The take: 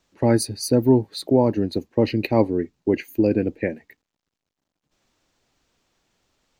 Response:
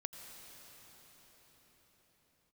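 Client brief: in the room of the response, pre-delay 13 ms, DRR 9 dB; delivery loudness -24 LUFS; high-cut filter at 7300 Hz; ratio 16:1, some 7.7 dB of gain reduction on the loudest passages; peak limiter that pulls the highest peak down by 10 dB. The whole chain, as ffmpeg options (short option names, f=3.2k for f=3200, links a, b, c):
-filter_complex "[0:a]lowpass=7.3k,acompressor=threshold=-18dB:ratio=16,alimiter=limit=-19dB:level=0:latency=1,asplit=2[a][b];[1:a]atrim=start_sample=2205,adelay=13[c];[b][c]afir=irnorm=-1:irlink=0,volume=-7dB[d];[a][d]amix=inputs=2:normalize=0,volume=6.5dB"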